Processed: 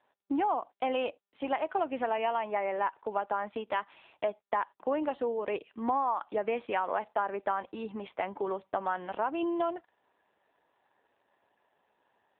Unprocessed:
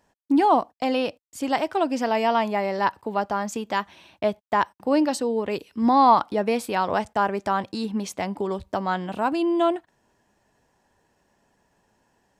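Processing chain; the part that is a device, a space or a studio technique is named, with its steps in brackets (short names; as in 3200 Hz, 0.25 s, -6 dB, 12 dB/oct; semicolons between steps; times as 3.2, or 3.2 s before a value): 3.77–4.41 dynamic EQ 120 Hz, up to -7 dB, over -51 dBFS, Q 2.2; voicemail (BPF 420–3200 Hz; compressor 8:1, threshold -24 dBFS, peak gain reduction 13 dB; gain -1 dB; AMR-NB 7.4 kbps 8000 Hz)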